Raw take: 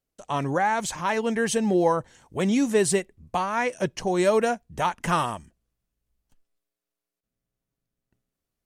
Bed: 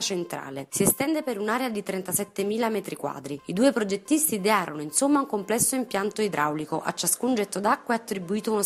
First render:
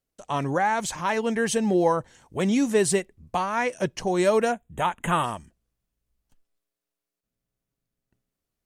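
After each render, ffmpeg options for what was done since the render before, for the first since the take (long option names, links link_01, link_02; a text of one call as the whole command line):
ffmpeg -i in.wav -filter_complex "[0:a]asettb=1/sr,asplit=3[link_01][link_02][link_03];[link_01]atrim=end=4.524[link_04];[link_02]atrim=start=4.52:end=5.24,asetpts=PTS-STARTPTS,afade=type=in:duration=0.004:curve=qsin,afade=type=out:start_time=0.716:duration=0.004:curve=qsin,asuperstop=centerf=5000:order=12:qfactor=1.9[link_05];[link_03]atrim=start=5.236[link_06];[link_04][link_05]acrossfade=duration=0.004:curve1=hsin:curve2=qsin[link_07];[link_07][link_06]acrossfade=duration=0.004:curve1=qsin:curve2=hsin" out.wav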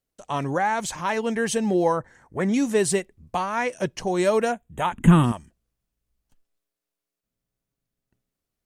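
ffmpeg -i in.wav -filter_complex "[0:a]asettb=1/sr,asplit=3[link_01][link_02][link_03];[link_01]atrim=end=1.984[link_04];[link_02]atrim=start=1.98:end=2.54,asetpts=PTS-STARTPTS,afade=type=in:duration=0.004:curve=qsin,afade=type=out:start_time=0.556:duration=0.004:curve=qsin,highshelf=frequency=2300:width_type=q:width=3:gain=-7[link_05];[link_03]atrim=start=2.536[link_06];[link_04][link_05]acrossfade=duration=0.004:curve1=hsin:curve2=qsin[link_07];[link_07][link_06]acrossfade=duration=0.004:curve1=qsin:curve2=hsin,asettb=1/sr,asplit=3[link_08][link_09][link_10];[link_08]atrim=end=4.924[link_11];[link_09]atrim=start=4.92:end=5.32,asetpts=PTS-STARTPTS,afade=type=in:duration=0.004:curve=qsin,afade=type=out:start_time=0.396:duration=0.004:curve=qsin,lowshelf=frequency=400:width_type=q:width=1.5:gain=13.5[link_12];[link_10]atrim=start=5.316[link_13];[link_11][link_12]acrossfade=duration=0.004:curve1=hsin:curve2=qsin[link_14];[link_14][link_13]acrossfade=duration=0.004:curve1=qsin:curve2=hsin" out.wav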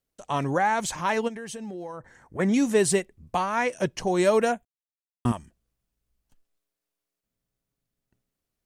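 ffmpeg -i in.wav -filter_complex "[0:a]asplit=3[link_01][link_02][link_03];[link_01]afade=type=out:start_time=1.27:duration=0.02[link_04];[link_02]acompressor=threshold=-34dB:ratio=8:attack=3.2:release=140:knee=1:detection=peak,afade=type=in:start_time=1.27:duration=0.02,afade=type=out:start_time=2.38:duration=0.02[link_05];[link_03]afade=type=in:start_time=2.38:duration=0.02[link_06];[link_04][link_05][link_06]amix=inputs=3:normalize=0,asplit=3[link_07][link_08][link_09];[link_07]atrim=end=4.65,asetpts=PTS-STARTPTS,afade=type=out:start_time=4.646:duration=0.004:curve=hsin[link_10];[link_08]atrim=start=4.65:end=5.25,asetpts=PTS-STARTPTS,volume=0[link_11];[link_09]atrim=start=5.25,asetpts=PTS-STARTPTS,afade=type=in:duration=0.004:curve=hsin[link_12];[link_10][link_11][link_12]concat=n=3:v=0:a=1" out.wav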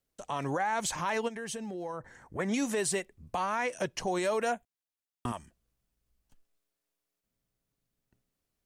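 ffmpeg -i in.wav -filter_complex "[0:a]acrossover=split=480|3000[link_01][link_02][link_03];[link_01]acompressor=threshold=-43dB:ratio=1.5[link_04];[link_04][link_02][link_03]amix=inputs=3:normalize=0,alimiter=limit=-21.5dB:level=0:latency=1:release=96" out.wav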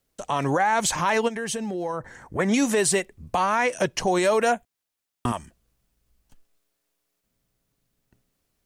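ffmpeg -i in.wav -af "volume=9dB" out.wav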